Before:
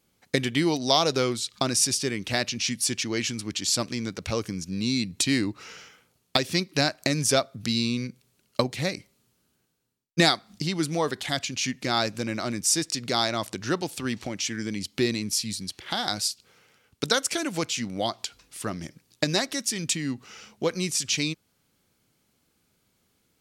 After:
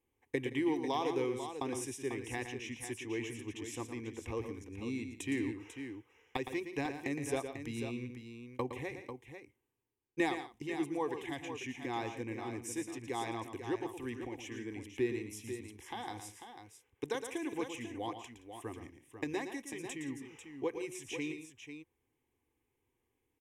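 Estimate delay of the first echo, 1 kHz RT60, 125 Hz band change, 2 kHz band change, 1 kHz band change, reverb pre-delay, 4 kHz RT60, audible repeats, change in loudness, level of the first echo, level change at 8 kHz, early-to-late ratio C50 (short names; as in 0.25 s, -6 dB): 0.114 s, none, -14.0 dB, -12.0 dB, -10.0 dB, none, none, 3, -13.0 dB, -9.0 dB, -20.5 dB, none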